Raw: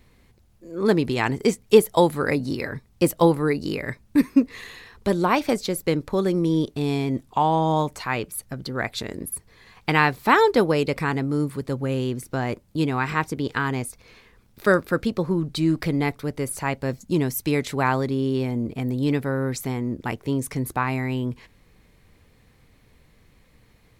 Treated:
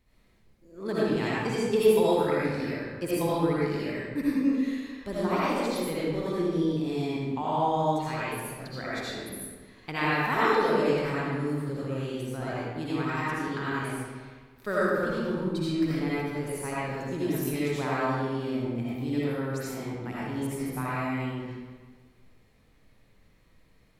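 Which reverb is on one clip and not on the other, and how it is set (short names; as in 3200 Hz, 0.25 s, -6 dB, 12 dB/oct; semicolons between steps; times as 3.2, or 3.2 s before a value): digital reverb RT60 1.5 s, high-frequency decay 0.75×, pre-delay 40 ms, DRR -9 dB; gain -14.5 dB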